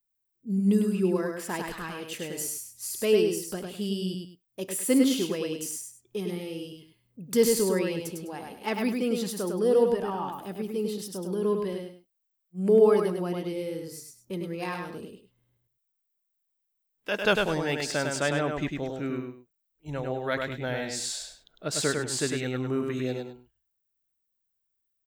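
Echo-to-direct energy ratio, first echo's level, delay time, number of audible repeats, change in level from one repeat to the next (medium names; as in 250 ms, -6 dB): -3.5 dB, -4.0 dB, 102 ms, 2, -11.5 dB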